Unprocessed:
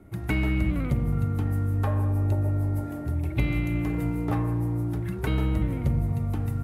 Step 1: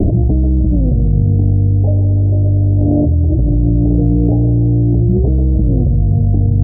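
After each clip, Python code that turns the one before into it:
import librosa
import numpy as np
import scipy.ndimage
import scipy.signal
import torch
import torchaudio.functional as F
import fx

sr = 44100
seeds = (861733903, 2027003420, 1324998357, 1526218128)

y = scipy.signal.sosfilt(scipy.signal.butter(12, 710.0, 'lowpass', fs=sr, output='sos'), x)
y = fx.low_shelf(y, sr, hz=86.0, db=8.5)
y = fx.env_flatten(y, sr, amount_pct=100)
y = y * librosa.db_to_amplitude(4.5)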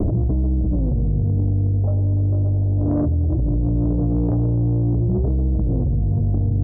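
y = 10.0 ** (-7.5 / 20.0) * np.tanh(x / 10.0 ** (-7.5 / 20.0))
y = y * librosa.db_to_amplitude(-5.0)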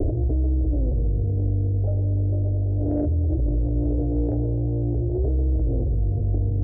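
y = fx.fixed_phaser(x, sr, hz=450.0, stages=4)
y = fx.echo_feedback(y, sr, ms=657, feedback_pct=33, wet_db=-19.0)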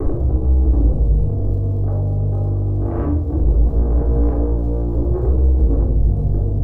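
y = fx.dmg_crackle(x, sr, seeds[0], per_s=220.0, level_db=-50.0)
y = 10.0 ** (-22.5 / 20.0) * np.tanh(y / 10.0 ** (-22.5 / 20.0))
y = fx.room_shoebox(y, sr, seeds[1], volume_m3=780.0, walls='furnished', distance_m=3.6)
y = y * librosa.db_to_amplitude(2.5)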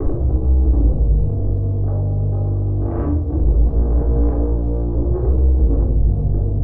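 y = fx.air_absorb(x, sr, metres=180.0)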